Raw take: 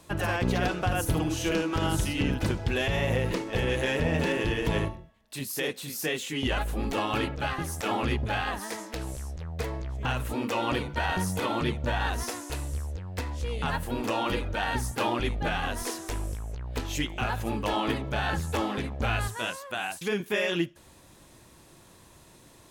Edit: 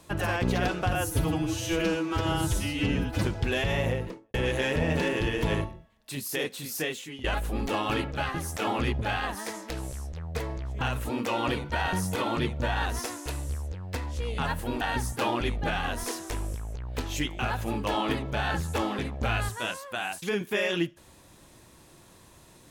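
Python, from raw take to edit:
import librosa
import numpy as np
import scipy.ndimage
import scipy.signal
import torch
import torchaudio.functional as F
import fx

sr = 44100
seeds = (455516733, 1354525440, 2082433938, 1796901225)

y = fx.studio_fade_out(x, sr, start_s=3.01, length_s=0.57)
y = fx.edit(y, sr, fx.stretch_span(start_s=0.95, length_s=1.52, factor=1.5),
    fx.fade_out_to(start_s=6.03, length_s=0.45, floor_db=-18.0),
    fx.cut(start_s=14.05, length_s=0.55), tone=tone)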